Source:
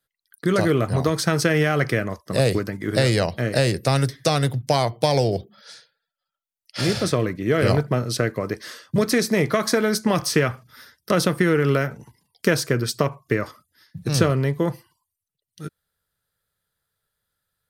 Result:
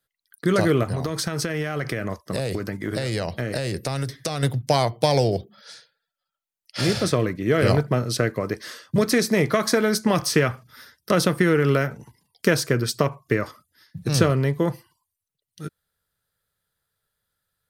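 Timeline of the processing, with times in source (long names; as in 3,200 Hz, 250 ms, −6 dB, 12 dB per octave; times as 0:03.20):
0:00.83–0:04.43: downward compressor 12 to 1, threshold −21 dBFS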